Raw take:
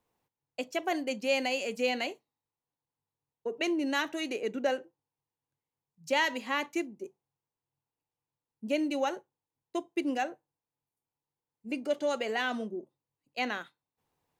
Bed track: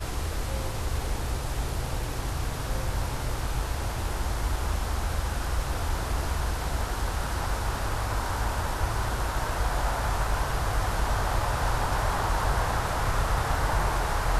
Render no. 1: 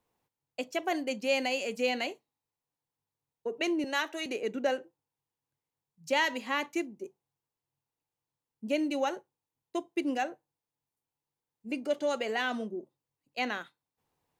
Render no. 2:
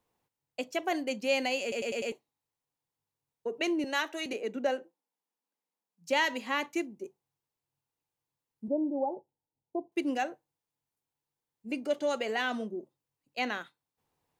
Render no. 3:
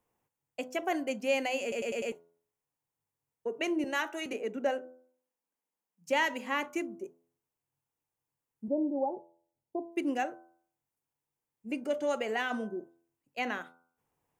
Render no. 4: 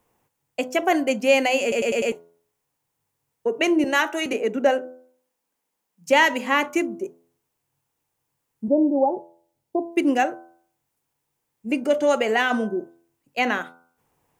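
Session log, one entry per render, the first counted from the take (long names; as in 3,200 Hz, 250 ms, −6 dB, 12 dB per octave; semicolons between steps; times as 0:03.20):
0:03.84–0:04.26: high-pass filter 350 Hz 24 dB per octave
0:01.62: stutter in place 0.10 s, 5 plays; 0:04.33–0:06.09: Chebyshev high-pass with heavy ripple 170 Hz, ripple 3 dB; 0:08.68–0:09.92: Chebyshev low-pass filter 940 Hz, order 6
parametric band 4,100 Hz −10 dB 0.63 octaves; hum removal 84.59 Hz, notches 18
level +11.5 dB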